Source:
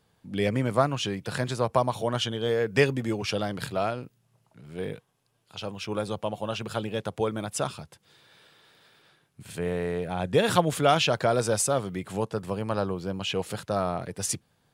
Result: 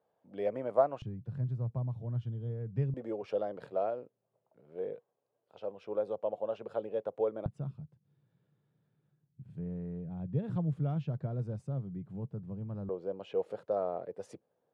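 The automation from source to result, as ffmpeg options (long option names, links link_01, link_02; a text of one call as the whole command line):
ffmpeg -i in.wav -af "asetnsamples=nb_out_samples=441:pad=0,asendcmd='1.02 bandpass f 120;2.94 bandpass f 530;7.46 bandpass f 140;12.89 bandpass f 510',bandpass=frequency=610:width_type=q:width=2.8:csg=0" out.wav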